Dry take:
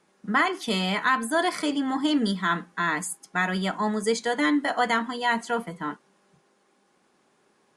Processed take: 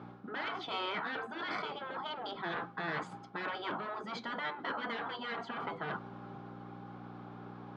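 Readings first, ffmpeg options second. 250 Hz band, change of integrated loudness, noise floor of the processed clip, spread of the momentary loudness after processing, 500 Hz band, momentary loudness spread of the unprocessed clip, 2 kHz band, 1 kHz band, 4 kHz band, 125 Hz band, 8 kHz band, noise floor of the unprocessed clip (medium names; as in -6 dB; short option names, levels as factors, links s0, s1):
-18.5 dB, -14.0 dB, -50 dBFS, 11 LU, -13.0 dB, 6 LU, -12.0 dB, -11.5 dB, -11.0 dB, -12.5 dB, under -25 dB, -66 dBFS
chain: -af "aeval=exprs='val(0)+0.00251*(sin(2*PI*60*n/s)+sin(2*PI*2*60*n/s)/2+sin(2*PI*3*60*n/s)/3+sin(2*PI*4*60*n/s)/4+sin(2*PI*5*60*n/s)/5)':c=same,areverse,acompressor=threshold=0.02:ratio=20,areverse,asoftclip=type=tanh:threshold=0.0168,highpass=f=130:w=0.5412,highpass=f=130:w=1.3066,equalizer=f=390:t=q:w=4:g=3,equalizer=f=790:t=q:w=4:g=9,equalizer=f=1300:t=q:w=4:g=8,equalizer=f=1900:t=q:w=4:g=-7,equalizer=f=2700:t=q:w=4:g=-6,lowpass=f=3300:w=0.5412,lowpass=f=3300:w=1.3066,afftfilt=real='re*lt(hypot(re,im),0.0316)':imag='im*lt(hypot(re,im),0.0316)':win_size=1024:overlap=0.75,volume=3.35"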